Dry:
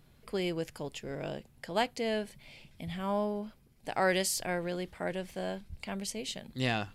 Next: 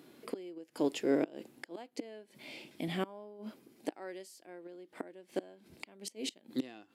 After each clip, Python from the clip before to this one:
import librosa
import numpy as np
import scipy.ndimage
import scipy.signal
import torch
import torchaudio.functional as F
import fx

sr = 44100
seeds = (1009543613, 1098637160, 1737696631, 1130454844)

y = fx.gate_flip(x, sr, shuts_db=-27.0, range_db=-27)
y = fx.highpass_res(y, sr, hz=310.0, q=3.4)
y = fx.hpss(y, sr, part='percussive', gain_db=-5)
y = y * 10.0 ** (7.0 / 20.0)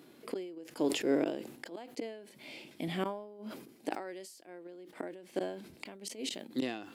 y = fx.sustainer(x, sr, db_per_s=73.0)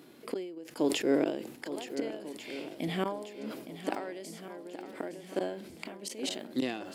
y = fx.echo_swing(x, sr, ms=1443, ratio=1.5, feedback_pct=42, wet_db=-11.5)
y = y * 10.0 ** (2.5 / 20.0)